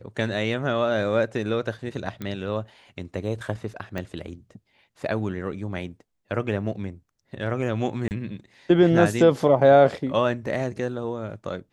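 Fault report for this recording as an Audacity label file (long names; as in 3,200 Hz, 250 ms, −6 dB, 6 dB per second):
2.220000	2.220000	click −19 dBFS
3.980000	3.980000	click −18 dBFS
8.080000	8.110000	drop-out 29 ms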